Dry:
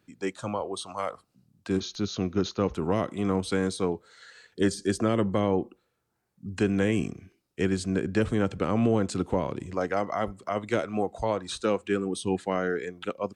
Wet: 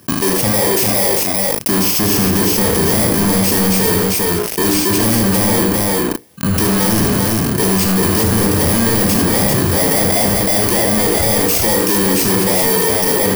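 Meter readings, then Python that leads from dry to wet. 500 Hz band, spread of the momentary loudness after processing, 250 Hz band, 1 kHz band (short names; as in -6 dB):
+11.0 dB, 3 LU, +12.5 dB, +12.5 dB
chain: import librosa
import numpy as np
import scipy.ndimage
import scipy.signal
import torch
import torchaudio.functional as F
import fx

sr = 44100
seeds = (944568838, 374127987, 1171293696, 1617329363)

p1 = fx.bit_reversed(x, sr, seeds[0], block=32)
p2 = scipy.signal.sosfilt(scipy.signal.butter(4, 64.0, 'highpass', fs=sr, output='sos'), p1)
p3 = fx.hum_notches(p2, sr, base_hz=60, count=8)
p4 = fx.leveller(p3, sr, passes=2)
p5 = fx.level_steps(p4, sr, step_db=23)
p6 = p4 + (p5 * librosa.db_to_amplitude(2.0))
p7 = fx.leveller(p6, sr, passes=5)
p8 = 10.0 ** (-14.0 / 20.0) * np.tanh(p7 / 10.0 ** (-14.0 / 20.0))
p9 = fx.doubler(p8, sr, ms=36.0, db=-8.0)
p10 = p9 + fx.echo_multitap(p9, sr, ms=(79, 396), db=(-7.0, -5.0), dry=0)
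p11 = fx.env_flatten(p10, sr, amount_pct=70)
y = p11 * librosa.db_to_amplitude(-2.5)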